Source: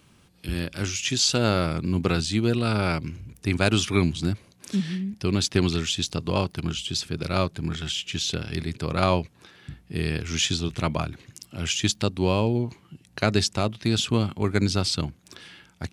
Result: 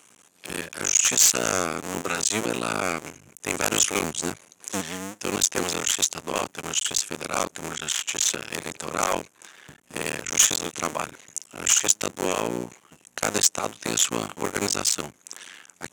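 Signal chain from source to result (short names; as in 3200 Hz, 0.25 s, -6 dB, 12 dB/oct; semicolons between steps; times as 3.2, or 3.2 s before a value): cycle switcher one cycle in 2, muted; weighting filter A; sine folder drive 11 dB, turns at -5.5 dBFS; resonant high shelf 5600 Hz +6.5 dB, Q 3; gain -9 dB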